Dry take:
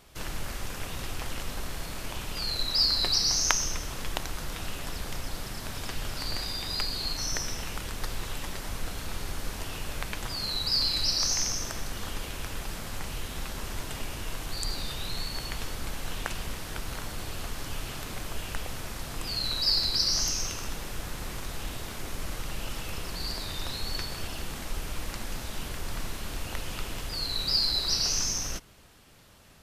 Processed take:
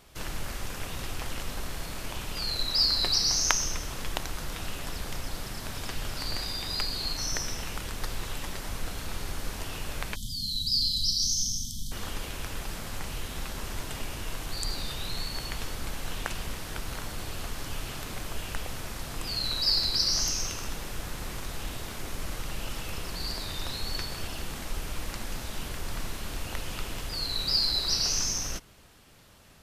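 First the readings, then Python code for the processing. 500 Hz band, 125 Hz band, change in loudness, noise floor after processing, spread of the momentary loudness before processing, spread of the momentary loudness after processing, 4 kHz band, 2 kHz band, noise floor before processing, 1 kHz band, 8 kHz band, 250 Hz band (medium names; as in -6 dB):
-0.5 dB, 0.0 dB, 0.0 dB, -39 dBFS, 14 LU, 14 LU, 0.0 dB, -0.5 dB, -39 dBFS, -0.5 dB, 0.0 dB, 0.0 dB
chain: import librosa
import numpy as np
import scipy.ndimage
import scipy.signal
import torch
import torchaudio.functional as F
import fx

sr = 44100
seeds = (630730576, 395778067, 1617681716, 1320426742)

y = fx.spec_erase(x, sr, start_s=10.15, length_s=1.77, low_hz=260.0, high_hz=3000.0)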